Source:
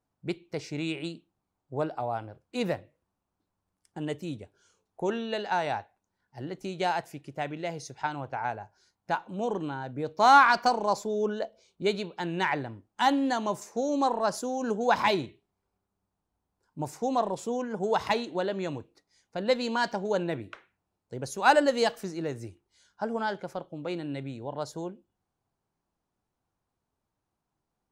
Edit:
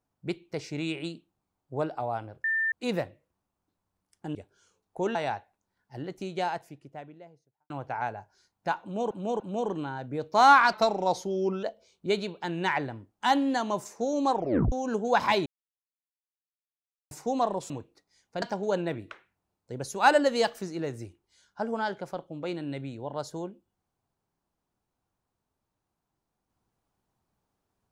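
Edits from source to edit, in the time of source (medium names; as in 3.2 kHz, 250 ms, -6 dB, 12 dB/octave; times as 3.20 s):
2.44 s: add tone 1.79 kHz -24 dBFS 0.28 s
4.07–4.38 s: delete
5.18–5.58 s: delete
6.43–8.13 s: studio fade out
9.25–9.54 s: loop, 3 plays
10.58–11.39 s: speed 90%
14.09 s: tape stop 0.39 s
15.22–16.87 s: mute
17.46–18.70 s: delete
19.42–19.84 s: delete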